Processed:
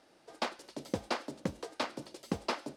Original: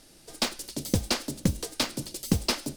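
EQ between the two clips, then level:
resonant band-pass 860 Hz, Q 0.84
0.0 dB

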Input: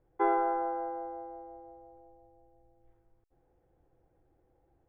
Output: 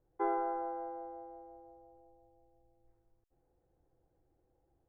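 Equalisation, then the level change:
high-shelf EQ 2,600 Hz −11.5 dB
−5.0 dB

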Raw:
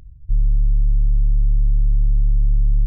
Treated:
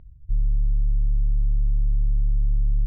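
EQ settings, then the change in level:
high-frequency loss of the air 440 metres
−5.0 dB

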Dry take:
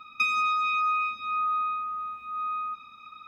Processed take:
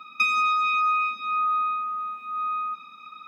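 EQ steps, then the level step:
elliptic high-pass filter 160 Hz, stop band 40 dB
+4.0 dB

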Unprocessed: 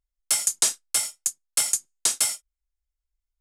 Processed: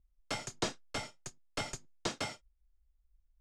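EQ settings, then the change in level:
high-frequency loss of the air 200 metres
tilt shelving filter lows +4.5 dB
low-shelf EQ 290 Hz +9 dB
−1.0 dB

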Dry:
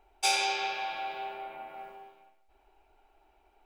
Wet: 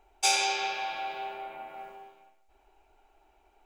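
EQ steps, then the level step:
parametric band 6,800 Hz +6 dB 0.45 octaves
+1.0 dB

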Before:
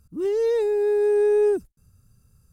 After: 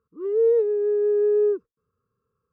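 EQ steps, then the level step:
pair of resonant band-passes 720 Hz, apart 1.3 octaves
high-frequency loss of the air 120 metres
+4.0 dB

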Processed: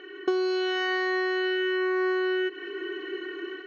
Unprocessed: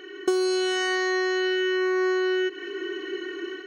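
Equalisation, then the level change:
Bessel low-pass filter 3,100 Hz, order 6
low-shelf EQ 230 Hz −8.5 dB
notch filter 2,100 Hz, Q 17
0.0 dB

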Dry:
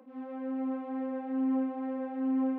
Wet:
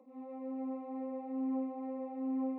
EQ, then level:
moving average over 28 samples
spectral tilt +3.5 dB per octave
+1.0 dB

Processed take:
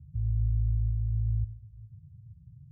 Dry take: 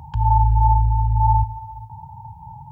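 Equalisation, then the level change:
high-pass filter 54 Hz 12 dB per octave
inverse Chebyshev low-pass filter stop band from 890 Hz, stop band 70 dB
−8.5 dB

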